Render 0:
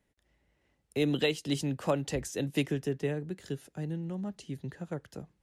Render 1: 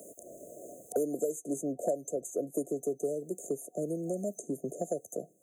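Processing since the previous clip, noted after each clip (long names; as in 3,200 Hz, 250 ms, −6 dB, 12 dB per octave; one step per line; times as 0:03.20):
brick-wall band-stop 730–6,200 Hz
high-pass filter 520 Hz 12 dB per octave
multiband upward and downward compressor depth 100%
level +6 dB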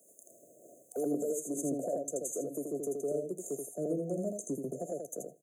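brickwall limiter −26.5 dBFS, peak gain reduction 7.5 dB
on a send: repeating echo 82 ms, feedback 15%, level −3.5 dB
on the sum: multiband upward and downward expander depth 100%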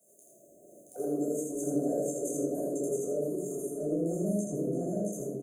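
single-tap delay 675 ms −3.5 dB
convolution reverb RT60 0.65 s, pre-delay 10 ms, DRR −5.5 dB
level −7.5 dB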